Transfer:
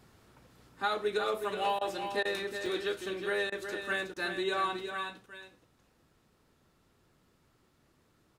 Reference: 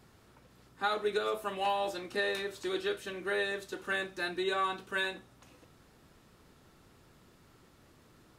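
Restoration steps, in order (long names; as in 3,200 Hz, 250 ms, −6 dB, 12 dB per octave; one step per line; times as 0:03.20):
repair the gap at 0:02.66, 2.2 ms
repair the gap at 0:01.79/0:02.23/0:03.50/0:04.14, 20 ms
echo removal 369 ms −7.5 dB
level 0 dB, from 0:04.89 +8.5 dB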